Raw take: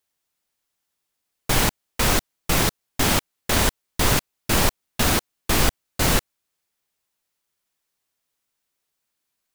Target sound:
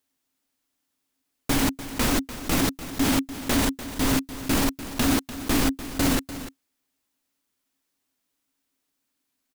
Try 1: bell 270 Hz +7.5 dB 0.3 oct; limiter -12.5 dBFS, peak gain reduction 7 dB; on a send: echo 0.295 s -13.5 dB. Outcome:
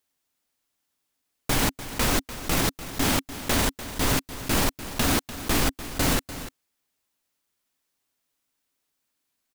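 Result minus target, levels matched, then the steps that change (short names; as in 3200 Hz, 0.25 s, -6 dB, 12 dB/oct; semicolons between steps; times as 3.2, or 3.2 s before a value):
250 Hz band -4.5 dB
change: bell 270 Hz +18 dB 0.3 oct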